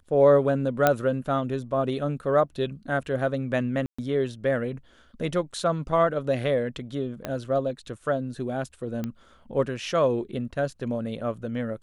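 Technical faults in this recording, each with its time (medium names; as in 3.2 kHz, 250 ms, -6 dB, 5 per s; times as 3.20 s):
0.87 s: pop -6 dBFS
3.86–3.98 s: dropout 125 ms
7.25 s: pop -16 dBFS
9.04 s: pop -18 dBFS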